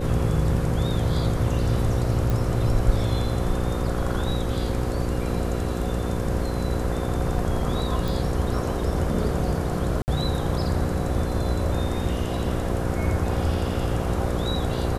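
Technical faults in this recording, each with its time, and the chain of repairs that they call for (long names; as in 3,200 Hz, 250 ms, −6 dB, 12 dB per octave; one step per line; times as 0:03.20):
mains buzz 60 Hz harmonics 9 −29 dBFS
0:02.30: click
0:08.08: click
0:10.02–0:10.08: drop-out 59 ms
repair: click removal
hum removal 60 Hz, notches 9
repair the gap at 0:10.02, 59 ms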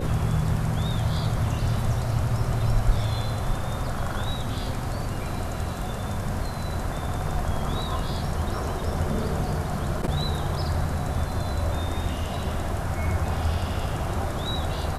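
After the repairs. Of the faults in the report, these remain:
none of them is left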